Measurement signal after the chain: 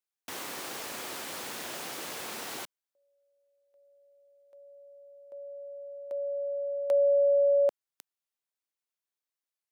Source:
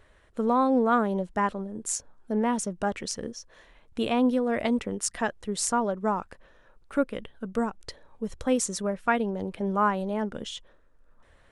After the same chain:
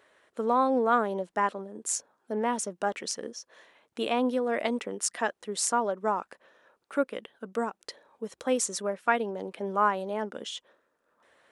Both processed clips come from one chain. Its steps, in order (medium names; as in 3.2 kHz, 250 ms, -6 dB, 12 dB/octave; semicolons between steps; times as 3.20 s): high-pass 320 Hz 12 dB/octave